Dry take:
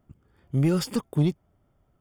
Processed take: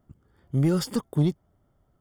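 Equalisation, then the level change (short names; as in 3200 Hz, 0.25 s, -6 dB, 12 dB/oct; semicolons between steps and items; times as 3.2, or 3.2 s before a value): bell 2500 Hz -9.5 dB 0.28 oct; 0.0 dB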